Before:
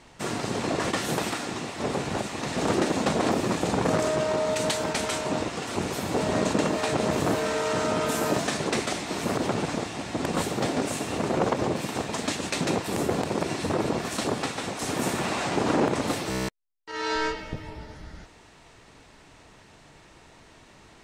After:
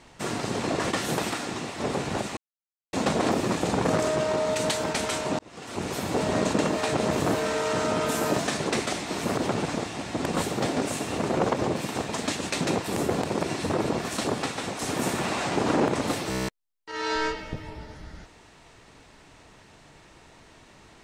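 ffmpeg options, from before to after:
-filter_complex "[0:a]asplit=4[s0][s1][s2][s3];[s0]atrim=end=2.37,asetpts=PTS-STARTPTS,afade=t=out:st=2.366:d=0.004:c=hsin[s4];[s1]atrim=start=2.37:end=2.93,asetpts=PTS-STARTPTS,volume=0[s5];[s2]atrim=start=2.93:end=5.39,asetpts=PTS-STARTPTS,afade=t=in:d=0.004:c=hsin,afade=t=out:st=2.456:d=0.004:c=hsin[s6];[s3]atrim=start=5.39,asetpts=PTS-STARTPTS,afade=t=in:d=0.57[s7];[s4][s5][s6][s7]concat=n=4:v=0:a=1"

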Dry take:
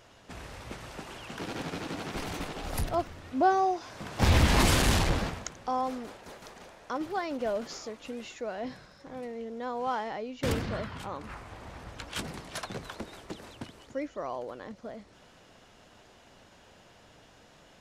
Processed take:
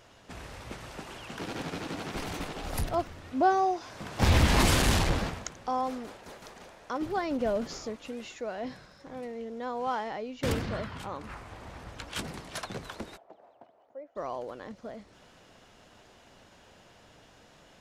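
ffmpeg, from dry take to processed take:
-filter_complex "[0:a]asettb=1/sr,asplit=3[s0][s1][s2];[s0]atrim=end=7.024[s3];[s1]atrim=start=7.02:end=7.96,asetpts=PTS-STARTPTS,afade=t=in:d=0.004:c=qsin,afade=t=out:st=0.936:d=0.004:c=qsin,lowshelf=f=260:g=10[s4];[s2]atrim=start=7.956[s5];[s3][s4]acrossfade=d=0.004:c1=hsin:c2=qsin[s6];[s6][s5]acrossfade=d=0.004:c1=qsin:c2=hsin,asplit=3[s7][s8][s9];[s7]afade=t=out:st=13.16:d=0.02[s10];[s8]bandpass=f=690:t=q:w=4.3,afade=t=in:st=13.16:d=0.02,afade=t=out:st=14.15:d=0.02[s11];[s9]afade=t=in:st=14.15:d=0.02[s12];[s10][s11][s12]amix=inputs=3:normalize=0"

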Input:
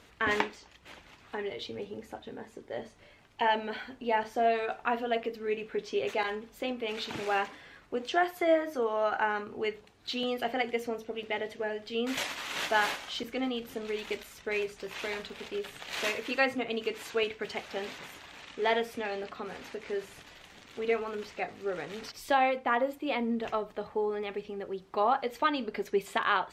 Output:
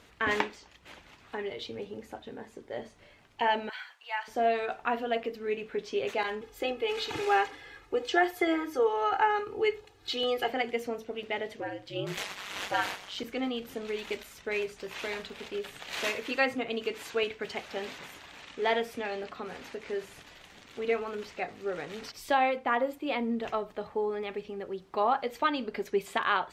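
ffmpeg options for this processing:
-filter_complex "[0:a]asettb=1/sr,asplit=3[s0][s1][s2];[s0]atrim=end=3.694[s3];[s1]atrim=start=3.69:end=4.28,asetpts=PTS-STARTPTS,afade=t=in:d=0.004:c=qsin,afade=t=out:st=0.586:d=0.004:c=qsin,highpass=f=1000:w=0.5412,highpass=f=1000:w=1.3066[s4];[s2]atrim=start=4.276[s5];[s3][s4]acrossfade=d=0.004:c1=hsin:c2=qsin[s6];[s6][s5]acrossfade=d=0.004:c1=qsin:c2=hsin,asettb=1/sr,asplit=3[s7][s8][s9];[s7]atrim=end=6.414[s10];[s8]atrim=start=6.41:end=10.5,asetpts=PTS-STARTPTS,afade=t=in:d=0.004:c=qsin,afade=t=out:st=4.086:d=0.004:c=qsin,aecho=1:1:2.4:0.91,atrim=end_sample=180369[s11];[s9]atrim=start=10.496[s12];[s10][s11]acrossfade=d=0.004:c1=hsin:c2=qsin[s13];[s13][s12]acrossfade=d=0.004:c1=qsin:c2=hsin,asettb=1/sr,asplit=3[s14][s15][s16];[s14]atrim=end=11.604[s17];[s15]atrim=start=11.6:end=13.18,asetpts=PTS-STARTPTS,afade=t=in:d=0.004:c=qsin,afade=t=out:st=1.576:d=0.004:c=qsin,aeval=exprs='val(0)*sin(2*PI*97*n/s)':c=same[s18];[s16]atrim=start=13.176[s19];[s17][s18]acrossfade=d=0.004:c1=hsin:c2=qsin[s20];[s20][s19]acrossfade=d=0.004:c1=qsin:c2=hsin"

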